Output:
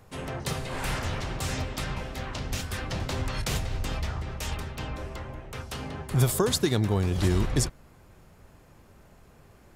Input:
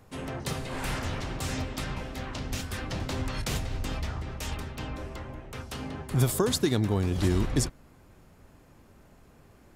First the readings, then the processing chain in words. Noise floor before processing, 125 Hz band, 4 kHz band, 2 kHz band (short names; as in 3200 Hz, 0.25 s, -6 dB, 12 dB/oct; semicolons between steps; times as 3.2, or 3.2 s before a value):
-57 dBFS, +2.0 dB, +2.0 dB, +2.0 dB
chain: bell 270 Hz -5 dB 0.53 oct; gain +2 dB